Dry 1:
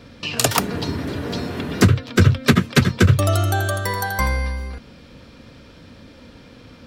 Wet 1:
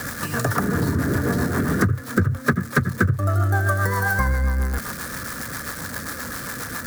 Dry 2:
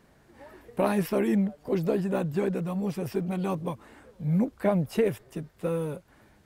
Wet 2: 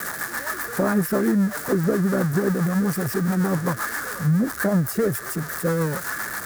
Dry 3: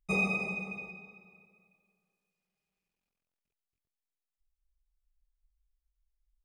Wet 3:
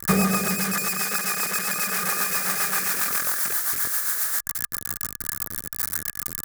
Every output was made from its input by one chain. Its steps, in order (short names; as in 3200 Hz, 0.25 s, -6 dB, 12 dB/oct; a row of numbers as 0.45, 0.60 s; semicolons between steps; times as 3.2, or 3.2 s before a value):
switching spikes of -12 dBFS; rotary speaker horn 7.5 Hz; bell 120 Hz +6 dB 2.4 oct; compressor 12:1, threshold -22 dBFS; resonant high shelf 2100 Hz -10 dB, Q 3; small resonant body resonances 1200/1700 Hz, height 7 dB; match loudness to -23 LUFS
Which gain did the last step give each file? +5.5, +6.0, +13.0 dB